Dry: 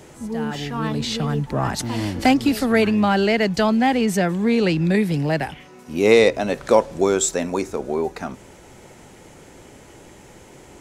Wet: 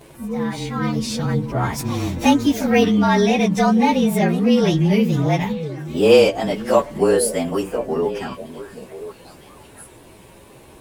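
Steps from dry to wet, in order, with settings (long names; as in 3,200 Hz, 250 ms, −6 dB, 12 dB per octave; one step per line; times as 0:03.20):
partials spread apart or drawn together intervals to 109%
echo through a band-pass that steps 515 ms, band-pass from 190 Hz, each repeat 1.4 octaves, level −7.5 dB
level +3 dB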